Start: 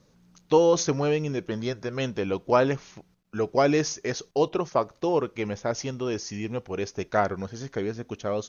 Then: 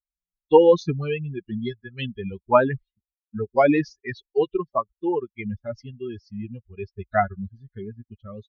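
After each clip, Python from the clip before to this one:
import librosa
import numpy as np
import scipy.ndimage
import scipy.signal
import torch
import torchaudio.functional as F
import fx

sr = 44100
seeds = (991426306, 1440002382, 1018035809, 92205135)

y = fx.bin_expand(x, sr, power=3.0)
y = scipy.signal.sosfilt(scipy.signal.butter(4, 3300.0, 'lowpass', fs=sr, output='sos'), y)
y = F.gain(torch.from_numpy(y), 8.5).numpy()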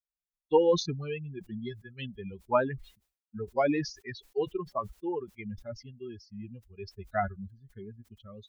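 y = fx.sustainer(x, sr, db_per_s=140.0)
y = F.gain(torch.from_numpy(y), -9.0).numpy()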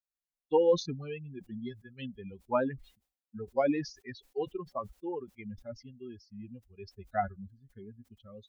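y = fx.small_body(x, sr, hz=(260.0, 530.0, 750.0), ring_ms=55, db=8)
y = F.gain(torch.from_numpy(y), -5.0).numpy()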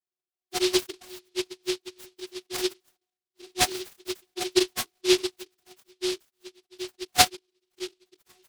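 y = fx.vocoder(x, sr, bands=32, carrier='saw', carrier_hz=366.0)
y = fx.noise_mod_delay(y, sr, seeds[0], noise_hz=3700.0, depth_ms=0.24)
y = F.gain(torch.from_numpy(y), 5.5).numpy()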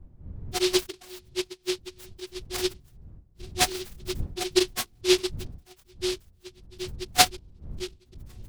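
y = fx.dmg_wind(x, sr, seeds[1], corner_hz=82.0, level_db=-42.0)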